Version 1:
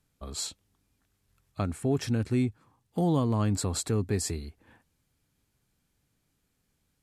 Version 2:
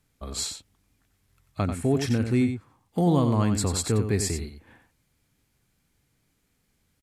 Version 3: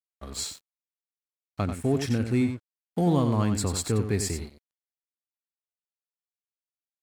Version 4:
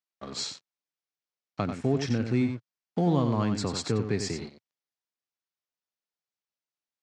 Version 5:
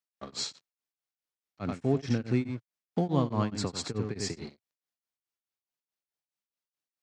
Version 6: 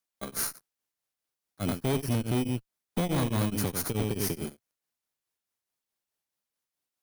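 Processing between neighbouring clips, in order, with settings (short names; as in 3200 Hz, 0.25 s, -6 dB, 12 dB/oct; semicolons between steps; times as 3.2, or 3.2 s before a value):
bell 2100 Hz +4 dB 0.32 oct; on a send: echo 91 ms -8 dB; on the sum: gain +3.5 dB
crossover distortion -44 dBFS; gain -1 dB
Chebyshev band-pass 120–5900 Hz, order 3; in parallel at 0 dB: compressor, threshold -32 dBFS, peak gain reduction 13.5 dB; on the sum: gain -3 dB
beating tremolo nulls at 4.7 Hz
FFT order left unsorted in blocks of 16 samples; tube stage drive 32 dB, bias 0.55; gain +8.5 dB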